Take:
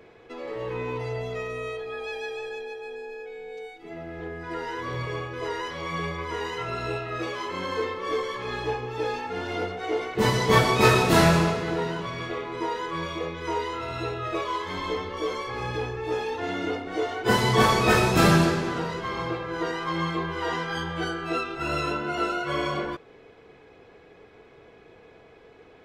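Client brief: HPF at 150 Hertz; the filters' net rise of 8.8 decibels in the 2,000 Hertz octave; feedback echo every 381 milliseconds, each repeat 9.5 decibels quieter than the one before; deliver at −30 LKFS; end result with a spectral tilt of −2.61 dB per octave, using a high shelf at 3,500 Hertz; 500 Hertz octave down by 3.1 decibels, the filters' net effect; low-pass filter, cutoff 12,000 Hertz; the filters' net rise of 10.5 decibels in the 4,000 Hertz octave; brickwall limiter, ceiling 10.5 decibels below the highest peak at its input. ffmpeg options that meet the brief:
ffmpeg -i in.wav -af "highpass=150,lowpass=12000,equalizer=frequency=500:width_type=o:gain=-4.5,equalizer=frequency=2000:width_type=o:gain=7.5,highshelf=frequency=3500:gain=8,equalizer=frequency=4000:width_type=o:gain=5.5,alimiter=limit=-10.5dB:level=0:latency=1,aecho=1:1:381|762|1143|1524:0.335|0.111|0.0365|0.012,volume=-6.5dB" out.wav

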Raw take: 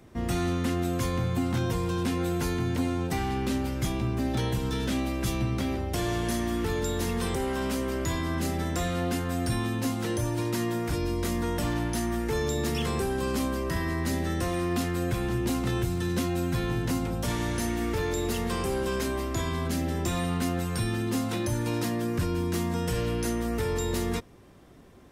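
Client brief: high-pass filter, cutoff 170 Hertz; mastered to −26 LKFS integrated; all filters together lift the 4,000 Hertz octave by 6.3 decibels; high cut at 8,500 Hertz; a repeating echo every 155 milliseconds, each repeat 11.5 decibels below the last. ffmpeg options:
ffmpeg -i in.wav -af "highpass=170,lowpass=8500,equalizer=frequency=4000:width_type=o:gain=8,aecho=1:1:155|310|465:0.266|0.0718|0.0194,volume=3.5dB" out.wav

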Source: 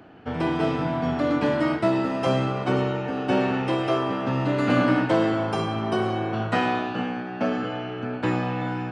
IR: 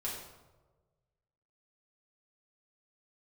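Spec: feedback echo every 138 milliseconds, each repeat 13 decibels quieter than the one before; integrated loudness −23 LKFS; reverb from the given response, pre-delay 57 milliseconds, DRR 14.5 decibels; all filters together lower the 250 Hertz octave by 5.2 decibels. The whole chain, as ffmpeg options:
-filter_complex "[0:a]equalizer=frequency=250:width_type=o:gain=-7,aecho=1:1:138|276|414:0.224|0.0493|0.0108,asplit=2[link_01][link_02];[1:a]atrim=start_sample=2205,adelay=57[link_03];[link_02][link_03]afir=irnorm=-1:irlink=0,volume=-16.5dB[link_04];[link_01][link_04]amix=inputs=2:normalize=0,volume=3.5dB"

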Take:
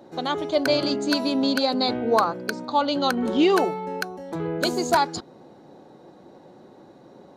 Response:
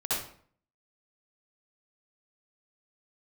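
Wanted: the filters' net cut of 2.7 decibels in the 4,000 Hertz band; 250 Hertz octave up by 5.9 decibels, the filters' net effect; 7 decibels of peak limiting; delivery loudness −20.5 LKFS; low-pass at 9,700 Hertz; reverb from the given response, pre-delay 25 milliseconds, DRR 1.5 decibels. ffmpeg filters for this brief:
-filter_complex "[0:a]lowpass=9700,equalizer=frequency=250:width_type=o:gain=7,equalizer=frequency=4000:width_type=o:gain=-3,alimiter=limit=-12.5dB:level=0:latency=1,asplit=2[link_01][link_02];[1:a]atrim=start_sample=2205,adelay=25[link_03];[link_02][link_03]afir=irnorm=-1:irlink=0,volume=-9.5dB[link_04];[link_01][link_04]amix=inputs=2:normalize=0"

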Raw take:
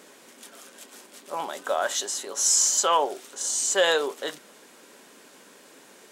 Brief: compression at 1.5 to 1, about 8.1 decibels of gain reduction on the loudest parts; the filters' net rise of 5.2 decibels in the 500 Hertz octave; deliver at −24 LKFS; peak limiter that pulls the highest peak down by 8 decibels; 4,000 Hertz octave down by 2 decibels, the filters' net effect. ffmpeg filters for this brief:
ffmpeg -i in.wav -af "equalizer=frequency=500:width_type=o:gain=6,equalizer=frequency=4000:width_type=o:gain=-3,acompressor=threshold=-35dB:ratio=1.5,volume=8dB,alimiter=limit=-15dB:level=0:latency=1" out.wav

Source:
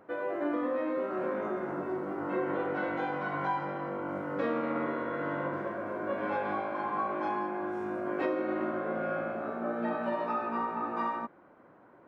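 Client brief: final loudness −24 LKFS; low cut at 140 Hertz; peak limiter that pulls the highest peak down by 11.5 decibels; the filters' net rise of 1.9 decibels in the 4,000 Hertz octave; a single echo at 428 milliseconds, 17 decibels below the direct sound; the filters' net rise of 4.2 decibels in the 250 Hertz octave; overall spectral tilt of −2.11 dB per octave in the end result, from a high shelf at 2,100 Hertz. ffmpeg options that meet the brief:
ffmpeg -i in.wav -af "highpass=140,equalizer=frequency=250:width_type=o:gain=6,highshelf=frequency=2100:gain=-5,equalizer=frequency=4000:width_type=o:gain=7.5,alimiter=level_in=4.5dB:limit=-24dB:level=0:latency=1,volume=-4.5dB,aecho=1:1:428:0.141,volume=12.5dB" out.wav

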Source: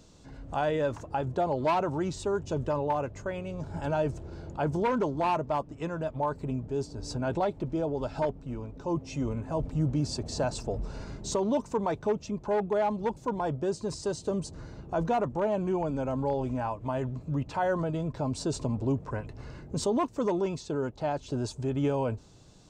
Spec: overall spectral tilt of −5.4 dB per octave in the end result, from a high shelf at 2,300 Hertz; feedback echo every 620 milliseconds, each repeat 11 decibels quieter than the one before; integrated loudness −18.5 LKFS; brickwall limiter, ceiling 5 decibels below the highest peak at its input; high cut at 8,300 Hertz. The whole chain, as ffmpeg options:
ffmpeg -i in.wav -af "lowpass=8300,highshelf=frequency=2300:gain=8,alimiter=limit=-21dB:level=0:latency=1,aecho=1:1:620|1240|1860:0.282|0.0789|0.0221,volume=13dB" out.wav

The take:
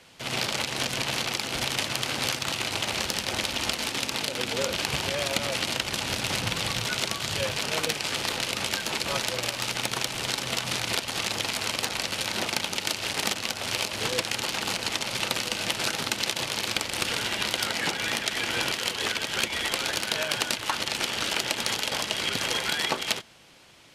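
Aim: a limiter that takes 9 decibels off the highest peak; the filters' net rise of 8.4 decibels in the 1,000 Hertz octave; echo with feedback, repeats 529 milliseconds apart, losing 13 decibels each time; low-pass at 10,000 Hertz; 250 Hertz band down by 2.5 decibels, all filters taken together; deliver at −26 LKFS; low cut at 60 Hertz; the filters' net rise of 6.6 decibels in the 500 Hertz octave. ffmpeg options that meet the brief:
ffmpeg -i in.wav -af "highpass=60,lowpass=10000,equalizer=frequency=250:width_type=o:gain=-6.5,equalizer=frequency=500:width_type=o:gain=6.5,equalizer=frequency=1000:width_type=o:gain=9,alimiter=limit=-14dB:level=0:latency=1,aecho=1:1:529|1058|1587:0.224|0.0493|0.0108" out.wav

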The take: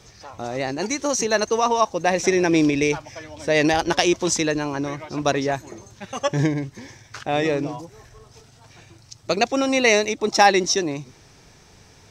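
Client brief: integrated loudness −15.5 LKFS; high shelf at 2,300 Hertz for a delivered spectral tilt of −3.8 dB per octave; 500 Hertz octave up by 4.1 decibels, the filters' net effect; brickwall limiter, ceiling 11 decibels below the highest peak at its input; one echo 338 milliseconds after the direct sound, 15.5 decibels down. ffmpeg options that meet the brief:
ffmpeg -i in.wav -af "equalizer=frequency=500:width_type=o:gain=5,highshelf=frequency=2300:gain=4,alimiter=limit=-11.5dB:level=0:latency=1,aecho=1:1:338:0.168,volume=7dB" out.wav

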